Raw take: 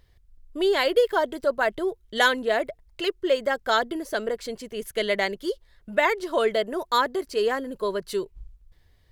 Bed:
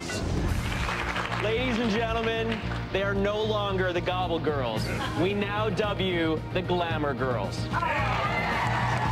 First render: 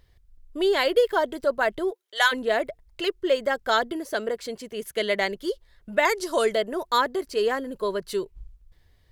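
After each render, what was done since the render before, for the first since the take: 1.9–2.31 HPF 270 Hz -> 910 Hz 24 dB/oct; 3.92–5.21 HPF 97 Hz 6 dB/oct; 6.05–6.55 band shelf 7500 Hz +11 dB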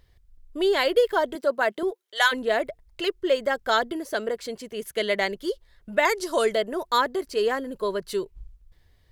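1.35–1.83 HPF 190 Hz 24 dB/oct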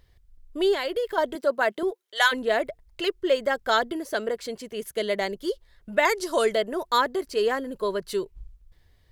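0.74–1.18 compressor 2:1, threshold -29 dBFS; 4.89–5.43 bell 2100 Hz -5.5 dB 1.9 oct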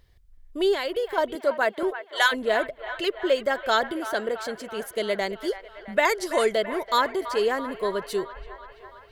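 band-limited delay 0.332 s, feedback 67%, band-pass 1300 Hz, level -11 dB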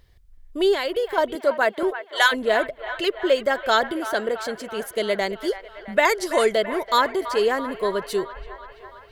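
gain +3 dB

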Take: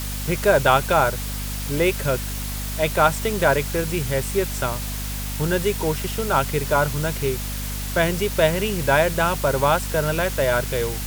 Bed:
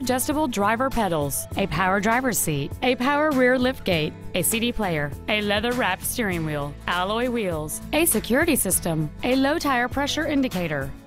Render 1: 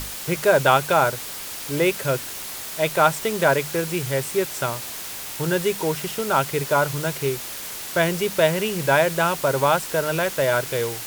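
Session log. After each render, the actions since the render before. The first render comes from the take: notches 50/100/150/200/250 Hz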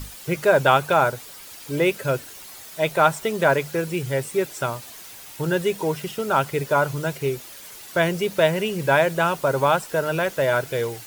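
denoiser 10 dB, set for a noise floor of -34 dBFS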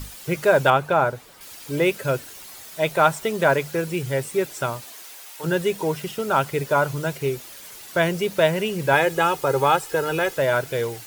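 0.7–1.41 high shelf 2800 Hz -10.5 dB; 4.84–5.43 HPF 230 Hz -> 640 Hz; 8.93–10.38 comb 2.4 ms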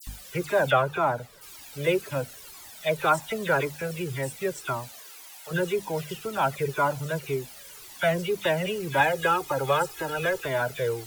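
dispersion lows, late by 72 ms, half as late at 2500 Hz; cascading flanger falling 1.9 Hz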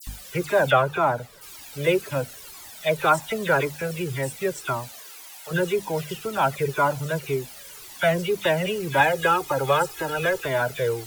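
gain +3 dB

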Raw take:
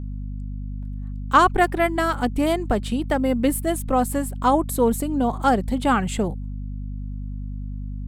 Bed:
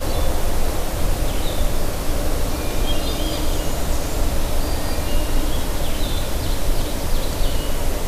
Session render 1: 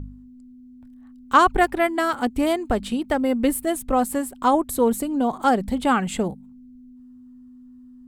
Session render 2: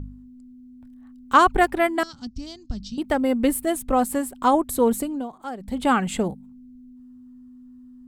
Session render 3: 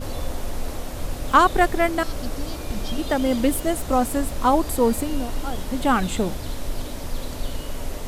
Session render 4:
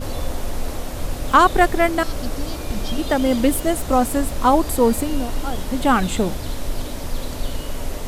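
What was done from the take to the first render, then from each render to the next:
de-hum 50 Hz, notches 4
2.03–2.98 EQ curve 170 Hz 0 dB, 450 Hz -26 dB, 2200 Hz -22 dB, 3600 Hz -7 dB, 5500 Hz +8 dB, 9800 Hz -30 dB; 5.01–5.86 dip -14.5 dB, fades 0.28 s
add bed -8.5 dB
gain +3 dB; limiter -2 dBFS, peak gain reduction 1.5 dB

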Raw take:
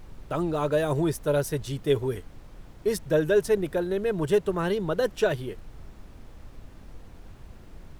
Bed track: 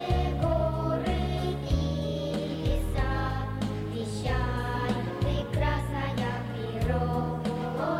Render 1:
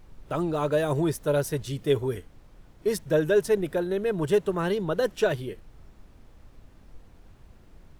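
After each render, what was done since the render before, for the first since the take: noise print and reduce 6 dB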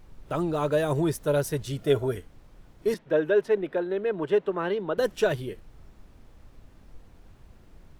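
1.68–2.11 small resonant body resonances 650/1400 Hz, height 12 dB -> 15 dB; 2.94–4.98 three-band isolator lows -16 dB, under 220 Hz, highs -21 dB, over 3600 Hz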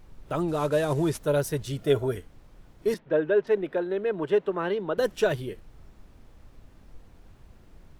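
0.48–1.18 CVSD 64 kbps; 3–3.47 air absorption 180 m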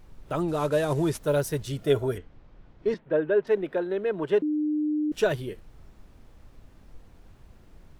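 1.22–1.68 block floating point 7-bit; 2.18–3.45 air absorption 170 m; 4.42–5.12 bleep 302 Hz -23 dBFS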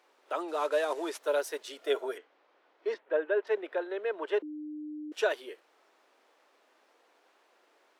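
Bessel high-pass 610 Hz, order 8; high shelf 7700 Hz -11.5 dB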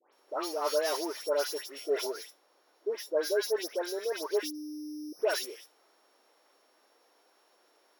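sample sorter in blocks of 8 samples; dispersion highs, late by 0.129 s, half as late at 1800 Hz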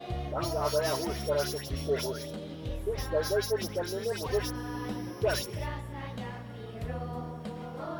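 add bed track -9 dB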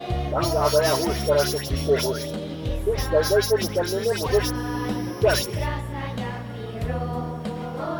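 gain +9 dB

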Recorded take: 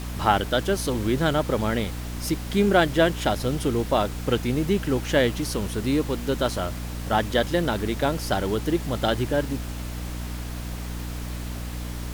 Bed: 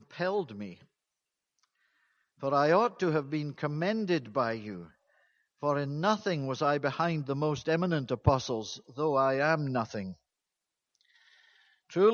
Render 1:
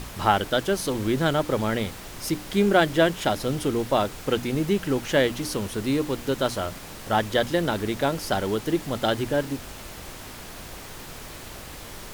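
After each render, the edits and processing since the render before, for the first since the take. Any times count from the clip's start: notches 60/120/180/240/300 Hz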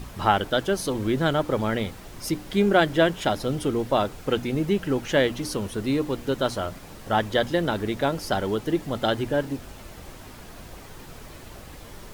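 denoiser 7 dB, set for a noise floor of -40 dBFS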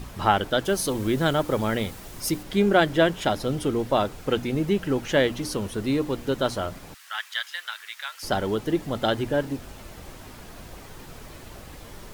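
0.65–2.43 high shelf 6700 Hz +8 dB; 6.94–8.23 HPF 1400 Hz 24 dB/oct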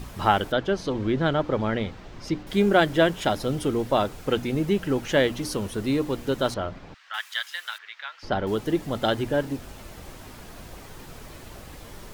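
0.52–2.47 air absorption 180 m; 6.54–7.14 air absorption 180 m; 7.78–8.47 air absorption 210 m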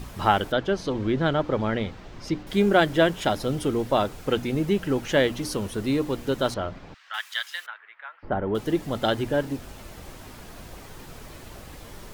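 7.66–8.55 Bessel low-pass 1500 Hz, order 4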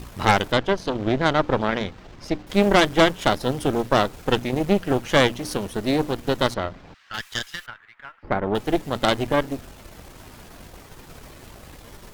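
half-wave gain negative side -3 dB; added harmonics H 6 -10 dB, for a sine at -5 dBFS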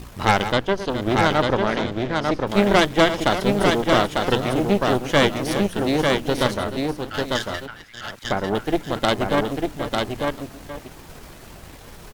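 reverse delay 0.384 s, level -11 dB; echo 0.898 s -3.5 dB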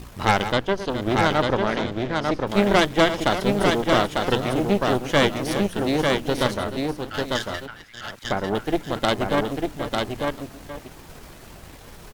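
gain -1.5 dB

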